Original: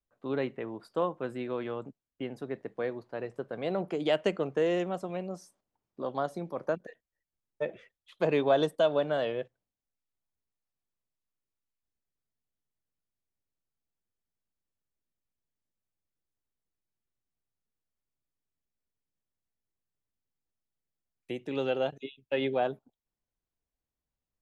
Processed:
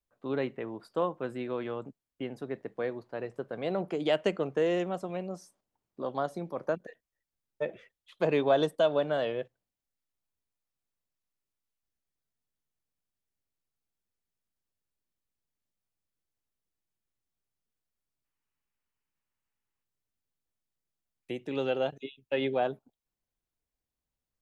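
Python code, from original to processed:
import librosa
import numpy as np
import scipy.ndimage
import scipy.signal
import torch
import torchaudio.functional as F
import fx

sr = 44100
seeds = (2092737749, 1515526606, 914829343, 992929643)

y = fx.spec_box(x, sr, start_s=18.25, length_s=1.58, low_hz=780.0, high_hz=3100.0, gain_db=7)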